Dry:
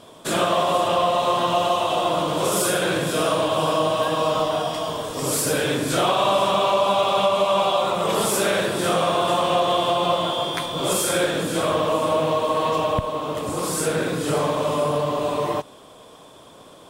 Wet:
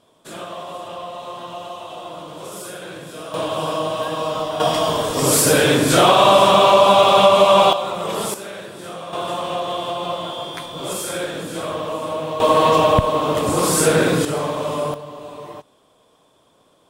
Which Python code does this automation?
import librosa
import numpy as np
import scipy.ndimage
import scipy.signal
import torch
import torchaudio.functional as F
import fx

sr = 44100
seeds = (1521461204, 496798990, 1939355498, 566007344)

y = fx.gain(x, sr, db=fx.steps((0.0, -12.0), (3.34, -2.0), (4.6, 7.5), (7.73, -2.5), (8.34, -12.0), (9.13, -4.5), (12.4, 7.5), (14.25, -1.0), (14.94, -11.5)))